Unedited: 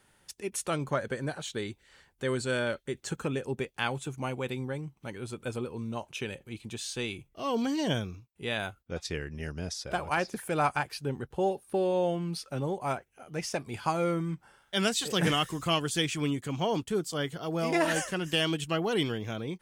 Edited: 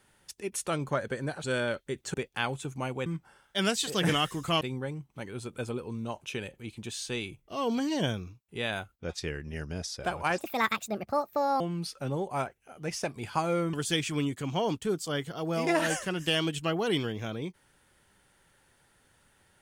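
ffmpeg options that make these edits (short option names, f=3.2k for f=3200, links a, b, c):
-filter_complex "[0:a]asplit=8[a][b][c][d][e][f][g][h];[a]atrim=end=1.442[i];[b]atrim=start=2.428:end=3.132[j];[c]atrim=start=3.558:end=4.482[k];[d]atrim=start=14.238:end=15.792[l];[e]atrim=start=4.478:end=10.254[m];[f]atrim=start=10.25:end=12.11,asetpts=PTS-STARTPTS,asetrate=67032,aresample=44100,atrim=end_sample=53964,asetpts=PTS-STARTPTS[n];[g]atrim=start=12.106:end=14.242[o];[h]atrim=start=15.788[p];[i][j]acrossfade=d=0.004:c1=hsin:c2=hsin[q];[q][k]acrossfade=d=0.004:c1=hsin:c2=hsin[r];[r][l]acrossfade=d=0.004:c1=hsin:c2=hsin[s];[s][m]acrossfade=d=0.004:c1=hsin:c2=hsin[t];[t][n]acrossfade=d=0.004:c1=hsin:c2=hsin[u];[u][o]acrossfade=d=0.004:c1=hsin:c2=hsin[v];[v][p]acrossfade=d=0.004:c1=hsin:c2=hsin"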